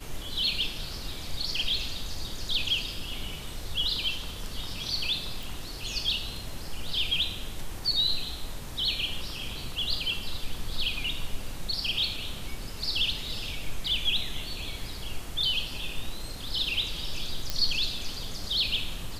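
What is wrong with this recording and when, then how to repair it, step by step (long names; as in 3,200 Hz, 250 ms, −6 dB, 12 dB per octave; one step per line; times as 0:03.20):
0:05.43: click
0:17.50: click −13 dBFS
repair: click removal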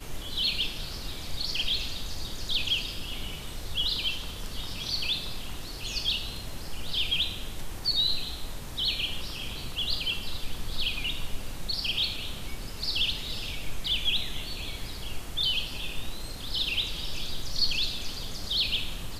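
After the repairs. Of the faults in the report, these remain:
none of them is left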